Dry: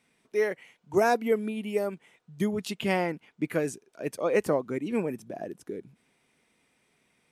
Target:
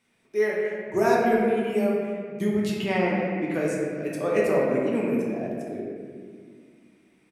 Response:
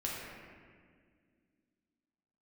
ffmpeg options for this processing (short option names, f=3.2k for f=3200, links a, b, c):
-filter_complex "[0:a]asettb=1/sr,asplit=3[a][b][c];[a]atrim=end=2.844[d];[b]atrim=start=2.84:end=3.54,asetpts=PTS-STARTPTS,afade=t=in:d=0.004:c=qsin,afade=t=out:st=0.696:d=0.004:c=qsin,highpass=130,lowpass=6k[e];[c]atrim=start=3.536[f];[d][e]acrossfade=d=0.004:c1=hsin:c2=qsin[g];[g][f]acrossfade=d=0.004:c1=qsin:c2=hsin,asplit=2[h][i];[i]adelay=260,highpass=300,lowpass=3.4k,asoftclip=type=hard:threshold=-21.5dB,volume=-20dB[j];[h][j]amix=inputs=2:normalize=0[k];[1:a]atrim=start_sample=2205[l];[k][l]afir=irnorm=-1:irlink=0"